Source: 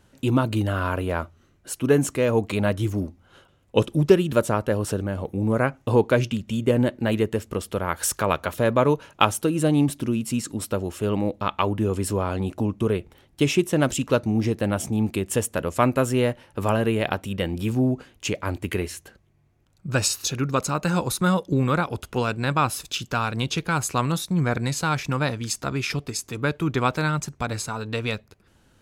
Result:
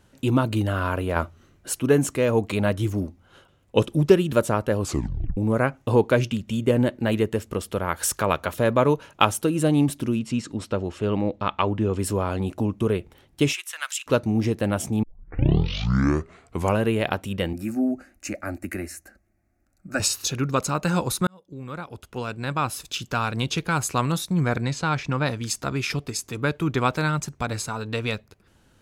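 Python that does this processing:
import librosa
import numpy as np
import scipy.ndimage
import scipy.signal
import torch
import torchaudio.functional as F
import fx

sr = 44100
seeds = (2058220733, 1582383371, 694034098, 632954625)

y = fx.lowpass(x, sr, hz=5100.0, slope=12, at=(10.19, 11.99))
y = fx.highpass(y, sr, hz=1300.0, slope=24, at=(13.52, 14.06), fade=0.02)
y = fx.fixed_phaser(y, sr, hz=660.0, stages=8, at=(17.53, 20.0))
y = fx.air_absorb(y, sr, metres=81.0, at=(24.61, 25.26))
y = fx.edit(y, sr, fx.clip_gain(start_s=1.16, length_s=0.64, db=4.0),
    fx.tape_stop(start_s=4.8, length_s=0.57),
    fx.tape_start(start_s=15.03, length_s=1.81),
    fx.fade_in_span(start_s=21.27, length_s=2.01), tone=tone)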